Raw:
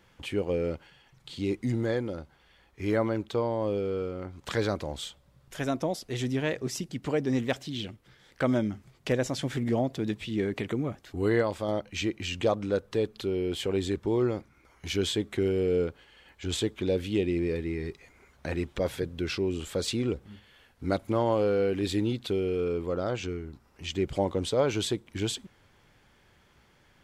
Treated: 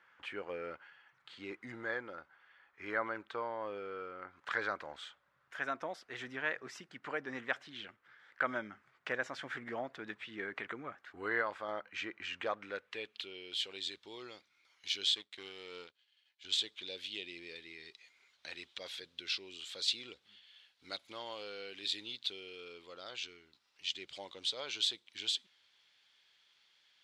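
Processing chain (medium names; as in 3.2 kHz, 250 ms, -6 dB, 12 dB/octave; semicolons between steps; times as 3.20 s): 15.14–16.45 s: power-law waveshaper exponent 1.4; band-pass sweep 1.5 kHz -> 3.8 kHz, 12.38–13.56 s; trim +3.5 dB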